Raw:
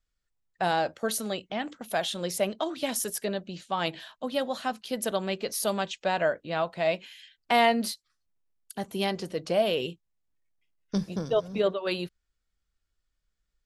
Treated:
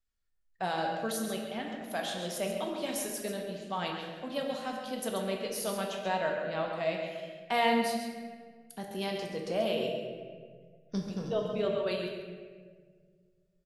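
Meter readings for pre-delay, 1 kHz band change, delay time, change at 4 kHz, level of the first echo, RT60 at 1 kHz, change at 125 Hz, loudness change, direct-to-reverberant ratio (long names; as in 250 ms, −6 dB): 4 ms, −4.5 dB, 136 ms, −5.0 dB, −8.0 dB, 1.4 s, −3.5 dB, −4.5 dB, 0.0 dB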